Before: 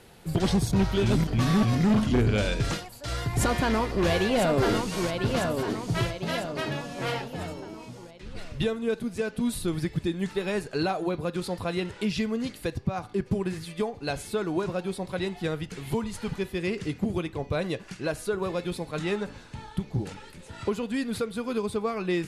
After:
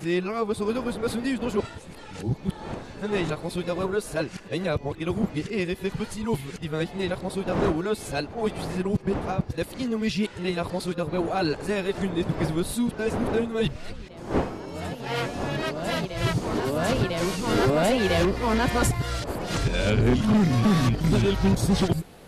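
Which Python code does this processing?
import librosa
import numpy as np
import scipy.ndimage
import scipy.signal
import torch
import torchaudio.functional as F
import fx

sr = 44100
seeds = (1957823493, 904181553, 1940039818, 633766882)

y = np.flip(x).copy()
y = fx.dmg_wind(y, sr, seeds[0], corner_hz=560.0, level_db=-39.0)
y = y * 10.0 ** (2.0 / 20.0)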